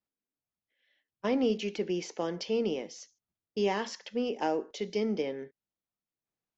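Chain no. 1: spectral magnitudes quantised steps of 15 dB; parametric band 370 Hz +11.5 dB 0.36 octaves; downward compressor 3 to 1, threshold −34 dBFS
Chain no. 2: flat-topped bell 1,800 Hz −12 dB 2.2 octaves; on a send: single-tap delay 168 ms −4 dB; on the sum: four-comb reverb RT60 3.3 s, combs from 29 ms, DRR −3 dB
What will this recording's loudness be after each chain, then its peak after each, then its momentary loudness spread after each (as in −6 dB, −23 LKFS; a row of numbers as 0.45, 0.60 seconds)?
−37.0, −27.0 LKFS; −22.5, −10.5 dBFS; 8, 14 LU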